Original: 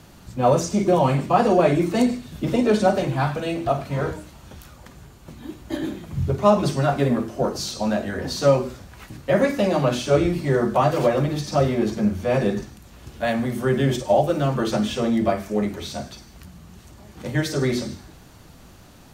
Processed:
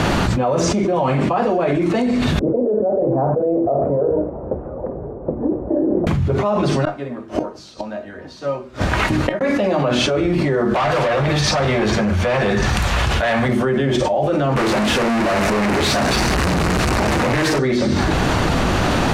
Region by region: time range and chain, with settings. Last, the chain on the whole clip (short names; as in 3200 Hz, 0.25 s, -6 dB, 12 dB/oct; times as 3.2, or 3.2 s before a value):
2.39–6.07 ladder low-pass 590 Hz, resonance 50% + low shelf 390 Hz -10.5 dB
6.85–9.41 flipped gate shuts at -22 dBFS, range -34 dB + resonator 310 Hz, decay 0.16 s
10.74–13.49 bell 290 Hz -13 dB 1.6 oct + hard clip -26.5 dBFS
14.56–17.59 infinite clipping + bell 3300 Hz -5 dB 0.29 oct
whole clip: LPF 9300 Hz 12 dB/oct; tone controls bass -5 dB, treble -11 dB; fast leveller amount 100%; gain -5 dB